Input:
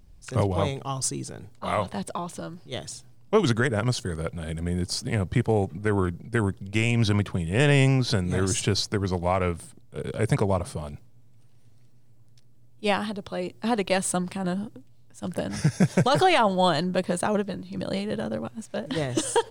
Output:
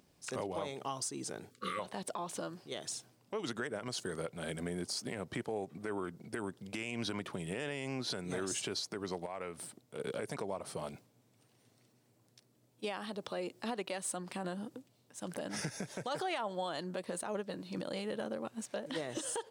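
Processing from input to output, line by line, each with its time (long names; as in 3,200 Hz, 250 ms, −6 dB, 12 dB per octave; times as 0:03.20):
0:01.50–0:01.79: time-frequency box erased 550–1,100 Hz
0:09.26–0:10.00: downward compressor 2.5 to 1, threshold −39 dBFS
whole clip: high-pass filter 260 Hz 12 dB per octave; downward compressor 4 to 1, threshold −35 dBFS; brickwall limiter −27 dBFS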